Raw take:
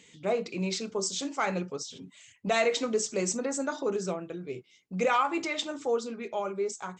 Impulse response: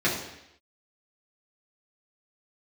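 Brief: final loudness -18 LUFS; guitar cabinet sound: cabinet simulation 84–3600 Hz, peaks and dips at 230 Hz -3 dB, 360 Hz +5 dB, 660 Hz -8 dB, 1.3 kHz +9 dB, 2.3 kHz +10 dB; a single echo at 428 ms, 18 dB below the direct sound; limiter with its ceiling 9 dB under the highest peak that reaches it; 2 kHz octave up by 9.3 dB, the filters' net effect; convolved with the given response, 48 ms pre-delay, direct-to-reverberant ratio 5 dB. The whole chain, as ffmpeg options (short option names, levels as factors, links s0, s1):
-filter_complex "[0:a]equalizer=f=2000:t=o:g=3.5,alimiter=limit=0.0794:level=0:latency=1,aecho=1:1:428:0.126,asplit=2[s0][s1];[1:a]atrim=start_sample=2205,adelay=48[s2];[s1][s2]afir=irnorm=-1:irlink=0,volume=0.112[s3];[s0][s3]amix=inputs=2:normalize=0,highpass=84,equalizer=f=230:t=q:w=4:g=-3,equalizer=f=360:t=q:w=4:g=5,equalizer=f=660:t=q:w=4:g=-8,equalizer=f=1300:t=q:w=4:g=9,equalizer=f=2300:t=q:w=4:g=10,lowpass=f=3600:w=0.5412,lowpass=f=3600:w=1.3066,volume=3.55"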